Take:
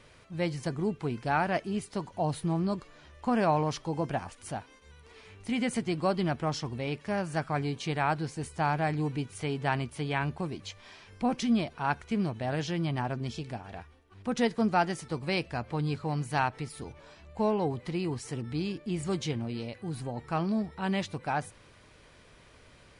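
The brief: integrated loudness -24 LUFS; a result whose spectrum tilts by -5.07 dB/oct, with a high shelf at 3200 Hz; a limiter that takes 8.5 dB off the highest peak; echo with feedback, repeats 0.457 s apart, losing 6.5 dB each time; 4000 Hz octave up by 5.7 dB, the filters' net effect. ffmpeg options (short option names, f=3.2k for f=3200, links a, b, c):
-af "highshelf=f=3.2k:g=6,equalizer=f=4k:t=o:g=3,alimiter=limit=-20dB:level=0:latency=1,aecho=1:1:457|914|1371|1828|2285|2742:0.473|0.222|0.105|0.0491|0.0231|0.0109,volume=7.5dB"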